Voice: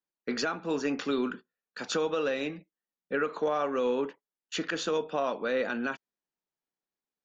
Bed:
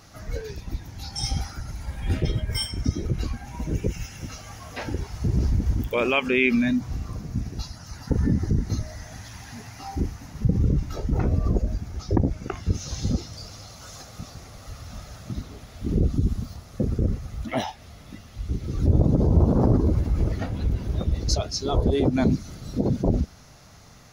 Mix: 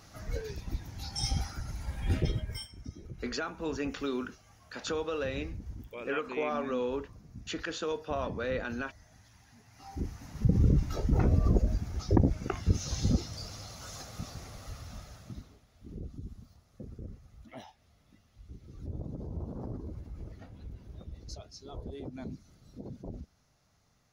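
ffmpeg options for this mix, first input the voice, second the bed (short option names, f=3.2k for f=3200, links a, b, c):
-filter_complex "[0:a]adelay=2950,volume=-4.5dB[a];[1:a]volume=12dB,afade=t=out:st=2.21:d=0.47:silence=0.188365,afade=t=in:st=9.67:d=0.97:silence=0.149624,afade=t=out:st=14.48:d=1.14:silence=0.125893[b];[a][b]amix=inputs=2:normalize=0"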